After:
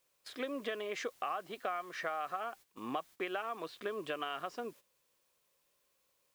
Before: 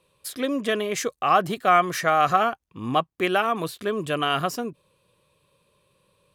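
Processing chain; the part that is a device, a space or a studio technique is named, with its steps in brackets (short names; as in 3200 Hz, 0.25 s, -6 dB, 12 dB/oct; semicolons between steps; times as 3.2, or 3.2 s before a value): baby monitor (BPF 370–3500 Hz; compressor 10:1, threshold -30 dBFS, peak gain reduction 17 dB; white noise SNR 24 dB; gate -49 dBFS, range -12 dB); gain -4.5 dB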